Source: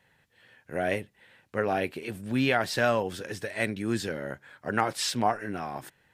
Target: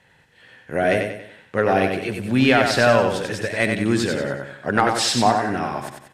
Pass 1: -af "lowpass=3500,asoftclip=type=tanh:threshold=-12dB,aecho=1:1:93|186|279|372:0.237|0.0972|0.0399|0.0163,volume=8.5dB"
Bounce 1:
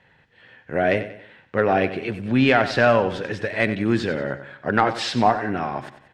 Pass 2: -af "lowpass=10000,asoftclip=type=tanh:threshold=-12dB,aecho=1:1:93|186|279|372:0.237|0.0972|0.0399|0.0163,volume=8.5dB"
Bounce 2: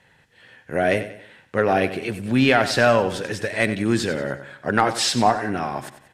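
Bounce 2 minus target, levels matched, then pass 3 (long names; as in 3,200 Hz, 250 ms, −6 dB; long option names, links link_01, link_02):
echo-to-direct −7.5 dB
-af "lowpass=10000,asoftclip=type=tanh:threshold=-12dB,aecho=1:1:93|186|279|372|465:0.562|0.231|0.0945|0.0388|0.0159,volume=8.5dB"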